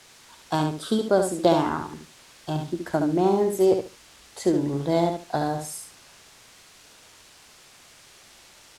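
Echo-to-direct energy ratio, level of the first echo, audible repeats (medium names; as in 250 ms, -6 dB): -6.0 dB, -6.0 dB, 3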